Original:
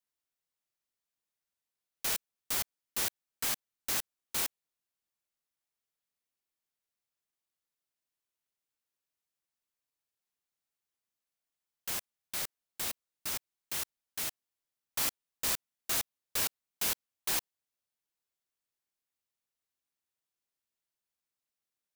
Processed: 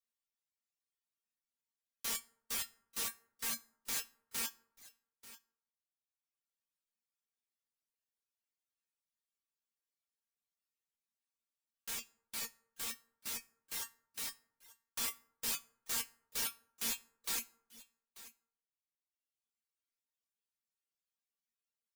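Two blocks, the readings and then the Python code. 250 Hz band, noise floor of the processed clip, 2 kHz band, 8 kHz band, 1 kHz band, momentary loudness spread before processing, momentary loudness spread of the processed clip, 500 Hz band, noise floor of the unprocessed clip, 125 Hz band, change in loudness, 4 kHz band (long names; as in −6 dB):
−5.0 dB, below −85 dBFS, −5.5 dB, −4.5 dB, −6.5 dB, 5 LU, 19 LU, −8.5 dB, below −85 dBFS, −11.0 dB, −5.5 dB, −5.0 dB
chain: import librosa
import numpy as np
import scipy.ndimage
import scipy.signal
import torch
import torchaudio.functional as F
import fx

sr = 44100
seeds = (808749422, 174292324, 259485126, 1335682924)

p1 = fx.high_shelf(x, sr, hz=5400.0, db=7.0)
p2 = fx.notch(p1, sr, hz=690.0, q=12.0)
p3 = fx.comb_fb(p2, sr, f0_hz=230.0, decay_s=0.29, harmonics='all', damping=0.0, mix_pct=90)
p4 = p3 + fx.echo_single(p3, sr, ms=888, db=-17.0, dry=0)
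p5 = fx.rev_plate(p4, sr, seeds[0], rt60_s=0.77, hf_ratio=0.45, predelay_ms=0, drr_db=9.0)
p6 = fx.dereverb_blind(p5, sr, rt60_s=1.3)
p7 = fx.high_shelf(p6, sr, hz=11000.0, db=-8.5)
y = p7 * 10.0 ** (5.5 / 20.0)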